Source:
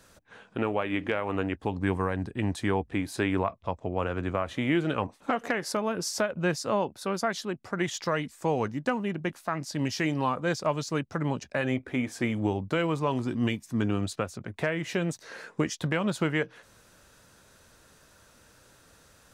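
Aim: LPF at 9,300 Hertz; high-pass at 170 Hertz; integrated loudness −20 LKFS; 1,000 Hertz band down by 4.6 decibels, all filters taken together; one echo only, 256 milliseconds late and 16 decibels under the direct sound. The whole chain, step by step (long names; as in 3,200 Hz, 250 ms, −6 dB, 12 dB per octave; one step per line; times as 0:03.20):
high-pass filter 170 Hz
low-pass filter 9,300 Hz
parametric band 1,000 Hz −6 dB
single-tap delay 256 ms −16 dB
level +11.5 dB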